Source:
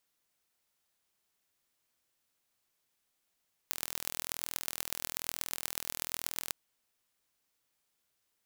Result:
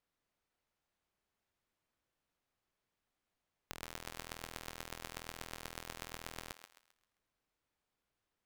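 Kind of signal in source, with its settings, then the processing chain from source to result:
pulse train 41.1 per s, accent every 5, -5 dBFS 2.80 s
low-pass 1.5 kHz 6 dB/octave; bass shelf 81 Hz +7.5 dB; on a send: thinning echo 132 ms, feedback 39%, high-pass 530 Hz, level -9 dB

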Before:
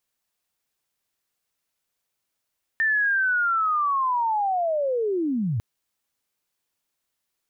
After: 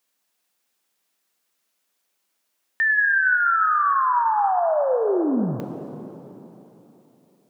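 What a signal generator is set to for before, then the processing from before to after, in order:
sweep linear 1.8 kHz -> 98 Hz -18.5 dBFS -> -22 dBFS 2.80 s
high-pass 180 Hz 24 dB/octave; in parallel at -1 dB: peak limiter -28.5 dBFS; on the sum: plate-style reverb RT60 3.5 s, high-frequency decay 0.95×, pre-delay 0 ms, DRR 6.5 dB

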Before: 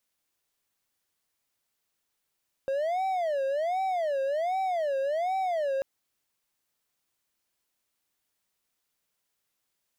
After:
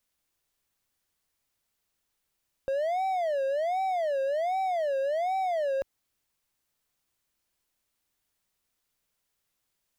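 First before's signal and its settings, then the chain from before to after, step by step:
siren wail 537–768 Hz 1.3 per s triangle -23.5 dBFS 3.14 s
bass shelf 92 Hz +10.5 dB

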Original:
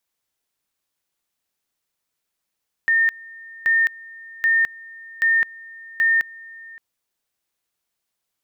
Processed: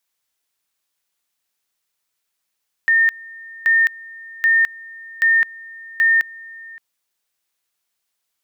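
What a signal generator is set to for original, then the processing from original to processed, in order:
two-level tone 1.82 kHz -14 dBFS, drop 23 dB, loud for 0.21 s, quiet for 0.57 s, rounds 5
tilt shelf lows -4 dB, about 720 Hz

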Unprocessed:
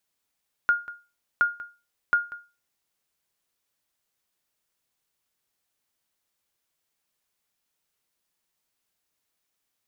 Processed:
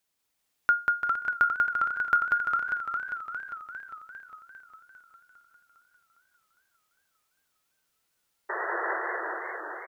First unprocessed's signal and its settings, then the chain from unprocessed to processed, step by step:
sonar ping 1.42 kHz, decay 0.30 s, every 0.72 s, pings 3, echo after 0.19 s, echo -17.5 dB -13 dBFS
painted sound noise, 8.49–8.98 s, 330–2000 Hz -32 dBFS; on a send: bouncing-ball echo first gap 190 ms, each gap 0.8×, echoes 5; on the sum: modulated delay 403 ms, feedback 60%, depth 93 cents, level -5 dB

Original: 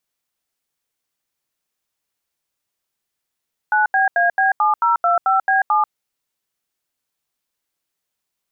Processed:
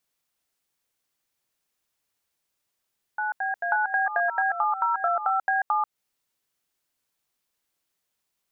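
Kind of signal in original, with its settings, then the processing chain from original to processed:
DTMF "9BAB7025B7", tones 139 ms, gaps 81 ms, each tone -15.5 dBFS
reverse echo 538 ms -11.5 dB; compression 5:1, threshold -22 dBFS

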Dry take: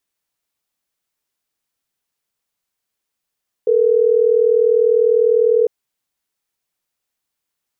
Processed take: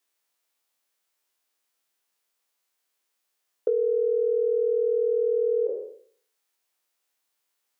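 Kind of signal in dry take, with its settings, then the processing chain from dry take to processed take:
call progress tone ringback tone, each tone -13.5 dBFS
spectral sustain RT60 0.52 s; high-pass 350 Hz 12 dB/octave; compression 6:1, threshold -22 dBFS

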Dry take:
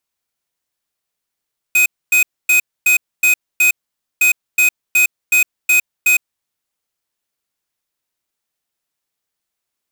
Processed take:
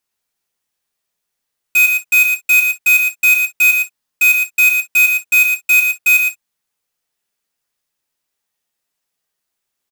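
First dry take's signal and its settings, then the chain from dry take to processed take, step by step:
beep pattern square 2.51 kHz, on 0.11 s, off 0.26 s, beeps 6, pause 0.50 s, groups 2, -11.5 dBFS
on a send: delay 114 ms -5.5 dB; on the sum: gated-style reverb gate 80 ms falling, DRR 3 dB

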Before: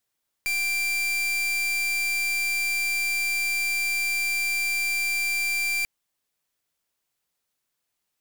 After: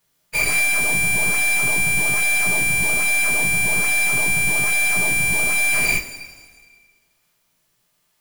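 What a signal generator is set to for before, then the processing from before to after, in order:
pulse 2.36 kHz, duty 40% -25.5 dBFS 5.39 s
every event in the spectrogram widened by 240 ms; in parallel at -12 dB: decimation with a swept rate 22×, swing 160% 1.2 Hz; on the sum: two-slope reverb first 0.21 s, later 1.7 s, from -18 dB, DRR -6 dB

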